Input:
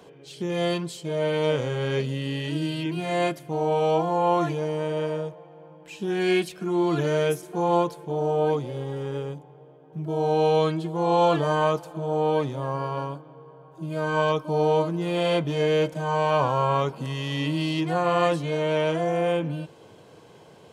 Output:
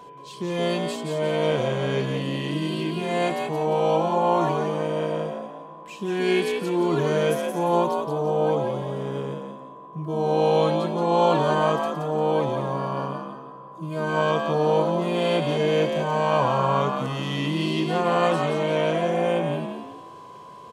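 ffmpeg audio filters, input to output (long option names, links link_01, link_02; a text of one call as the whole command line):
ffmpeg -i in.wav -filter_complex "[0:a]aeval=exprs='val(0)+0.00708*sin(2*PI*1000*n/s)':channel_layout=same,asplit=6[link_01][link_02][link_03][link_04][link_05][link_06];[link_02]adelay=174,afreqshift=61,volume=-5dB[link_07];[link_03]adelay=348,afreqshift=122,volume=-13.6dB[link_08];[link_04]adelay=522,afreqshift=183,volume=-22.3dB[link_09];[link_05]adelay=696,afreqshift=244,volume=-30.9dB[link_10];[link_06]adelay=870,afreqshift=305,volume=-39.5dB[link_11];[link_01][link_07][link_08][link_09][link_10][link_11]amix=inputs=6:normalize=0" out.wav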